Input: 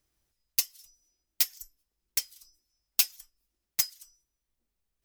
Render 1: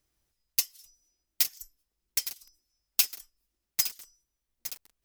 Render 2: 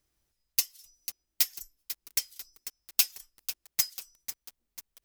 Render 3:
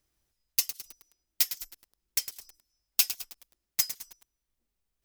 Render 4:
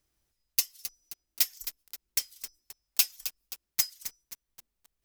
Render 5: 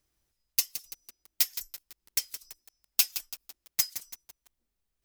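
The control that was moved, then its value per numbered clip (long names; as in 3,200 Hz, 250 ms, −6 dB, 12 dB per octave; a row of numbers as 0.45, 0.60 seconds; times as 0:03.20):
feedback echo at a low word length, delay time: 862, 494, 106, 264, 167 milliseconds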